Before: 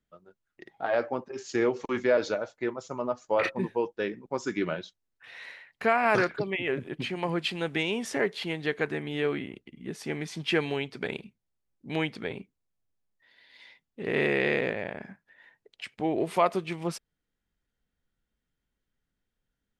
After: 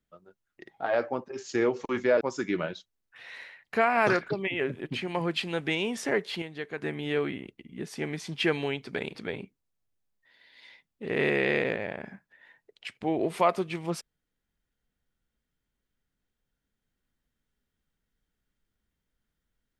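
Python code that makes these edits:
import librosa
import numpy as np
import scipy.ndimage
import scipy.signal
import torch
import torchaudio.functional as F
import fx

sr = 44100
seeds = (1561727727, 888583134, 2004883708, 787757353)

y = fx.edit(x, sr, fx.cut(start_s=2.21, length_s=2.08),
    fx.clip_gain(start_s=8.5, length_s=0.4, db=-7.5),
    fx.cut(start_s=11.23, length_s=0.89), tone=tone)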